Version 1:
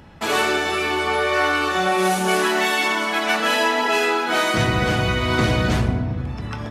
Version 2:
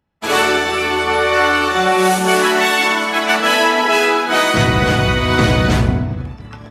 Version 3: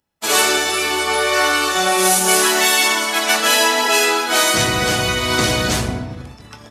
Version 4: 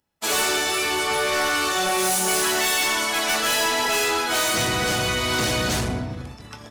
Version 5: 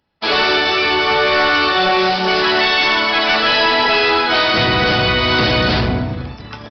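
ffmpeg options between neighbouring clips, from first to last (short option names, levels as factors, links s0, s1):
-af "agate=range=0.0224:threshold=0.1:ratio=3:detection=peak,volume=1.88"
-af "bass=f=250:g=-6,treble=f=4000:g=14,volume=0.708"
-af "asoftclip=type=tanh:threshold=0.133,volume=0.891"
-af "aresample=11025,aresample=44100,volume=2.66"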